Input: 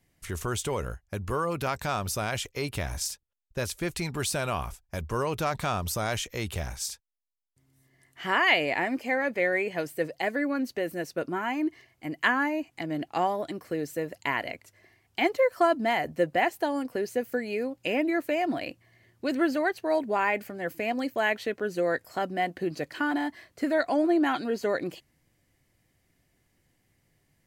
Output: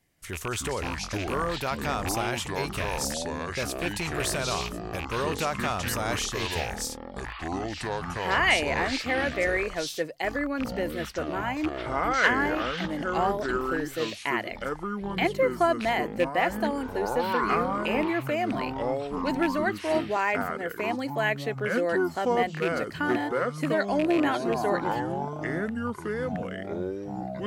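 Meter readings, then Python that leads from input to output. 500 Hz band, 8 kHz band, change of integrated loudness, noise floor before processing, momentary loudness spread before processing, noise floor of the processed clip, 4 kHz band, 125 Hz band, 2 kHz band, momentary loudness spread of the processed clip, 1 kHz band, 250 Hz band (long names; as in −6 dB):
+1.5 dB, +2.0 dB, +1.0 dB, −72 dBFS, 10 LU, −40 dBFS, +3.0 dB, +2.0 dB, +1.5 dB, 8 LU, +2.5 dB, +1.0 dB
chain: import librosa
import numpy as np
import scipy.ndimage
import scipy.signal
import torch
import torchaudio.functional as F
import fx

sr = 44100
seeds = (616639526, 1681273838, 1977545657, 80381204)

y = fx.rattle_buzz(x, sr, strikes_db=-32.0, level_db=-22.0)
y = fx.echo_pitch(y, sr, ms=188, semitones=-6, count=3, db_per_echo=-3.0)
y = fx.low_shelf(y, sr, hz=230.0, db=-4.5)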